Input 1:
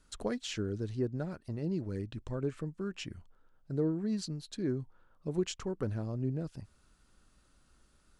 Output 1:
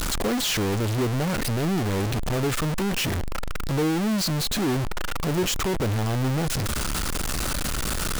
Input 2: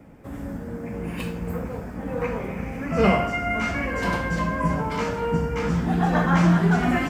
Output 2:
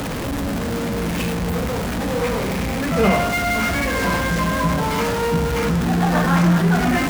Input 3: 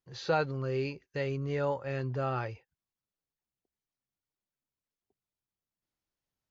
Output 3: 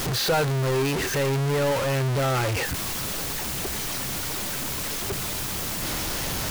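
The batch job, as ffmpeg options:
ffmpeg -i in.wav -af "aeval=exprs='val(0)+0.5*0.1*sgn(val(0))':channel_layout=same" out.wav

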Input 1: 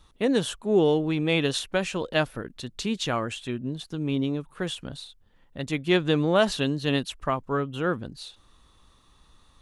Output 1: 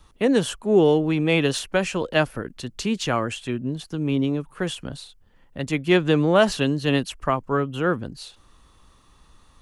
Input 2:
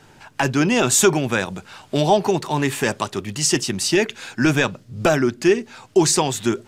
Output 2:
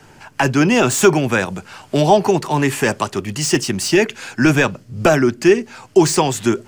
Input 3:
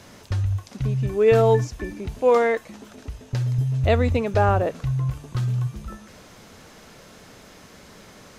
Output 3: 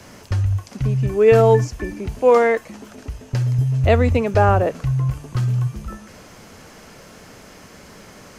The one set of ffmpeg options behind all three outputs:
ffmpeg -i in.wav -filter_complex "[0:a]equalizer=frequency=3700:width_type=o:width=0.23:gain=-7,acrossover=split=300|720|3000[link_01][link_02][link_03][link_04];[link_04]asoftclip=type=tanh:threshold=-22dB[link_05];[link_01][link_02][link_03][link_05]amix=inputs=4:normalize=0,volume=4dB" out.wav

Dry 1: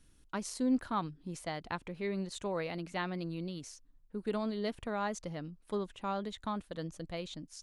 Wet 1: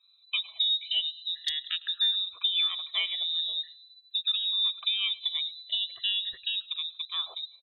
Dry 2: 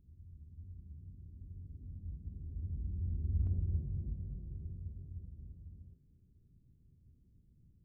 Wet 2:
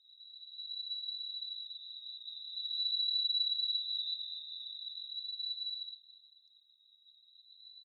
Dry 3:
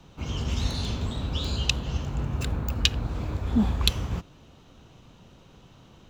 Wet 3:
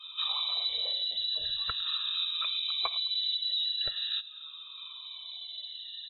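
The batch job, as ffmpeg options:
ffmpeg -i in.wav -af "afftfilt=real='re*pow(10,18/40*sin(2*PI*(1.1*log(max(b,1)*sr/1024/100)/log(2)-(0.43)*(pts-256)/sr)))':imag='im*pow(10,18/40*sin(2*PI*(1.1*log(max(b,1)*sr/1024/100)/log(2)-(0.43)*(pts-256)/sr)))':win_size=1024:overlap=0.75,highshelf=frequency=2100:gain=-11.5,asoftclip=type=tanh:threshold=-12dB,acompressor=threshold=-33dB:ratio=10,lowpass=frequency=3400:width_type=q:width=0.5098,lowpass=frequency=3400:width_type=q:width=0.6013,lowpass=frequency=3400:width_type=q:width=0.9,lowpass=frequency=3400:width_type=q:width=2.563,afreqshift=-4000,acontrast=82,equalizer=frequency=200:width=2.1:gain=-10.5,aecho=1:1:106|212|318:0.1|0.044|0.0194,afftdn=noise_reduction=14:noise_floor=-54,aecho=1:1:1.7:0.65" -ar 48000 -c:a aac -b:a 48k out.aac

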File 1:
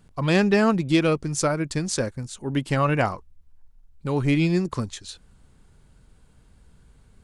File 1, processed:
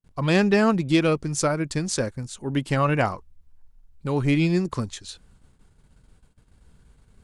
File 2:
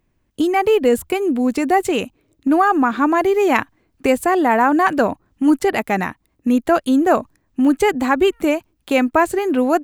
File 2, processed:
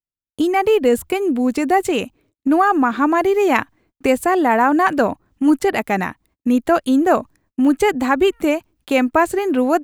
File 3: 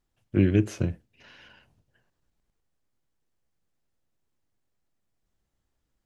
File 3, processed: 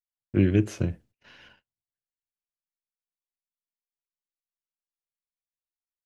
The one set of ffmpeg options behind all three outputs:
ffmpeg -i in.wav -af "agate=range=-36dB:threshold=-53dB:ratio=16:detection=peak" out.wav

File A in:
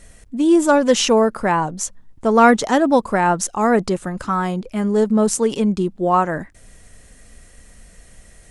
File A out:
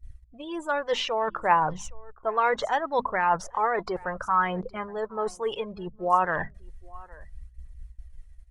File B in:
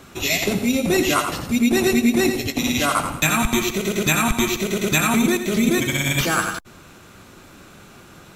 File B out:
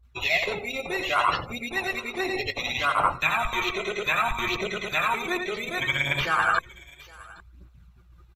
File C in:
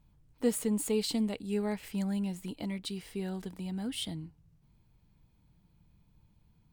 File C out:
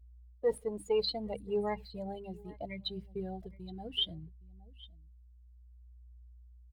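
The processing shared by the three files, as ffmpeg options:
ffmpeg -i in.wav -filter_complex "[0:a]asplit=2[link_01][link_02];[link_02]aeval=exprs='sgn(val(0))*max(abs(val(0))-0.0282,0)':channel_layout=same,volume=-12dB[link_03];[link_01][link_03]amix=inputs=2:normalize=0,agate=range=-17dB:threshold=-44dB:ratio=16:detection=peak,highshelf=frequency=5100:gain=-7,bandreject=frequency=50:width_type=h:width=6,bandreject=frequency=100:width_type=h:width=6,bandreject=frequency=150:width_type=h:width=6,bandreject=frequency=200:width_type=h:width=6,bandreject=frequency=250:width_type=h:width=6,aeval=exprs='val(0)+0.00316*(sin(2*PI*60*n/s)+sin(2*PI*2*60*n/s)/2+sin(2*PI*3*60*n/s)/3+sin(2*PI*4*60*n/s)/4+sin(2*PI*5*60*n/s)/5)':channel_layout=same,afftdn=noise_reduction=31:noise_floor=-34,areverse,acompressor=threshold=-29dB:ratio=10,areverse,crystalizer=i=3.5:c=0,aecho=1:1:815:0.0631,acrossover=split=3400[link_04][link_05];[link_05]acompressor=threshold=-45dB:ratio=4:attack=1:release=60[link_06];[link_04][link_06]amix=inputs=2:normalize=0,aphaser=in_gain=1:out_gain=1:delay=3:decay=0.41:speed=0.65:type=triangular,equalizer=frequency=250:width_type=o:width=1:gain=-11,equalizer=frequency=500:width_type=o:width=1:gain=5,equalizer=frequency=1000:width_type=o:width=1:gain=9,equalizer=frequency=2000:width_type=o:width=1:gain=5,equalizer=frequency=4000:width_type=o:width=1:gain=5,equalizer=frequency=8000:width_type=o:width=1:gain=-5" out.wav

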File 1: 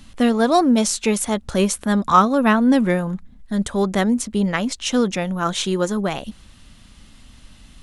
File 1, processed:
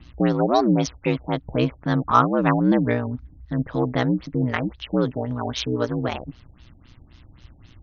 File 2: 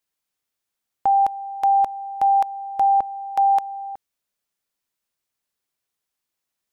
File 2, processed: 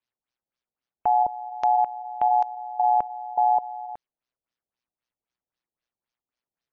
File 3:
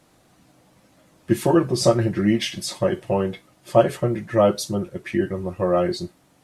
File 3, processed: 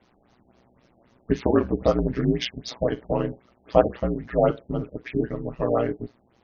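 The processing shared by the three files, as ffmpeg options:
ffmpeg -i in.wav -af "aeval=exprs='val(0)*sin(2*PI*61*n/s)':channel_layout=same,afftfilt=real='re*lt(b*sr/1024,830*pow(6800/830,0.5+0.5*sin(2*PI*3.8*pts/sr)))':imag='im*lt(b*sr/1024,830*pow(6800/830,0.5+0.5*sin(2*PI*3.8*pts/sr)))':win_size=1024:overlap=0.75" out.wav

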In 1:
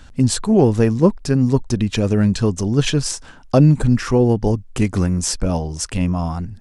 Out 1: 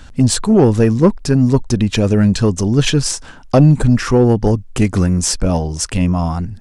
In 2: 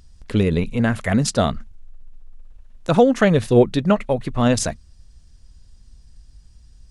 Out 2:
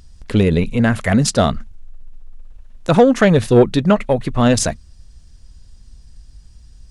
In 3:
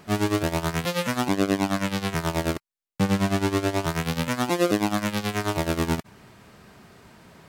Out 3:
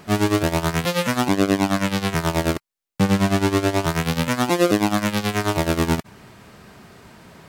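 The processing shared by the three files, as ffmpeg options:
ffmpeg -i in.wav -af "acontrast=43,volume=-1dB" out.wav

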